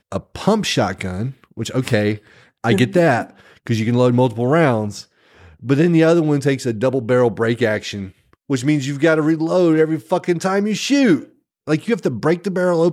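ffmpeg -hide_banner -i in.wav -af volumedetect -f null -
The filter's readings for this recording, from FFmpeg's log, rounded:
mean_volume: -17.7 dB
max_volume: -1.5 dB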